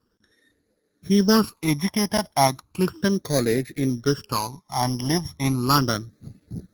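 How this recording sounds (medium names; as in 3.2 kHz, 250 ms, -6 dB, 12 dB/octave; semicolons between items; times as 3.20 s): a buzz of ramps at a fixed pitch in blocks of 8 samples; phasing stages 12, 0.35 Hz, lowest notch 430–1000 Hz; Opus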